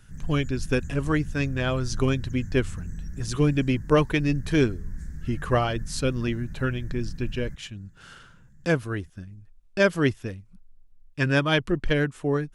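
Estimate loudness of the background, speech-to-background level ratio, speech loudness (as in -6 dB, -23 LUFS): -39.5 LUFS, 13.5 dB, -26.0 LUFS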